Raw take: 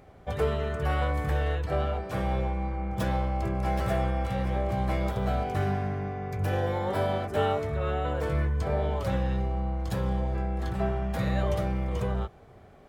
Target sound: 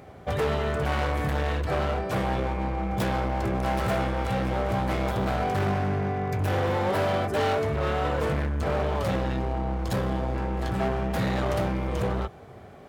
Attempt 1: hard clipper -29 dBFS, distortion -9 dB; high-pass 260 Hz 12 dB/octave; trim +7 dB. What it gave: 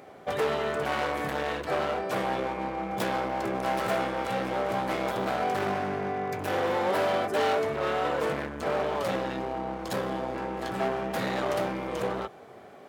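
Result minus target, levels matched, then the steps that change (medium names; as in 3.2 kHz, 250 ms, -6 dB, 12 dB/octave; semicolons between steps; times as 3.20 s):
125 Hz band -10.5 dB
change: high-pass 75 Hz 12 dB/octave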